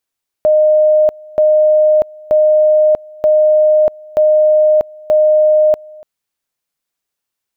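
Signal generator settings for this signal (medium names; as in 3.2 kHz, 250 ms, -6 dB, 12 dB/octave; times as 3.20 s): two-level tone 614 Hz -6.5 dBFS, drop 25.5 dB, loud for 0.64 s, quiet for 0.29 s, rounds 6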